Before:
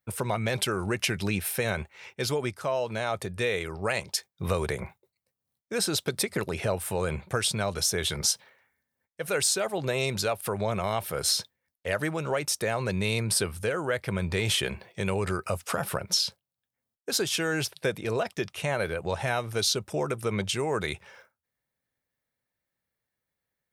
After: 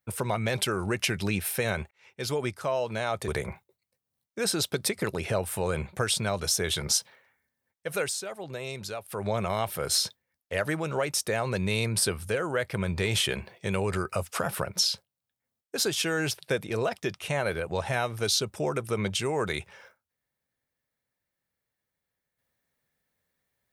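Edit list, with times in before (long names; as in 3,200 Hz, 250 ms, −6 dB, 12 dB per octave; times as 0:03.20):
0:01.91–0:02.40: fade in
0:03.28–0:04.62: remove
0:09.31–0:10.60: duck −8.5 dB, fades 0.16 s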